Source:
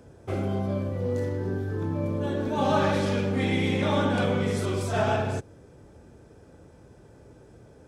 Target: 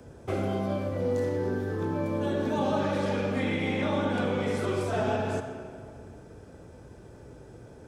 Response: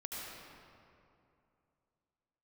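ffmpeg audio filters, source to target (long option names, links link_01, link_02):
-filter_complex "[0:a]acrossover=split=230|530|2700[link_01][link_02][link_03][link_04];[link_01]acompressor=threshold=-37dB:ratio=4[link_05];[link_02]acompressor=threshold=-32dB:ratio=4[link_06];[link_03]acompressor=threshold=-36dB:ratio=4[link_07];[link_04]acompressor=threshold=-51dB:ratio=4[link_08];[link_05][link_06][link_07][link_08]amix=inputs=4:normalize=0,asplit=2[link_09][link_10];[1:a]atrim=start_sample=2205,asetrate=52920,aresample=44100[link_11];[link_10][link_11]afir=irnorm=-1:irlink=0,volume=-2.5dB[link_12];[link_09][link_12]amix=inputs=2:normalize=0"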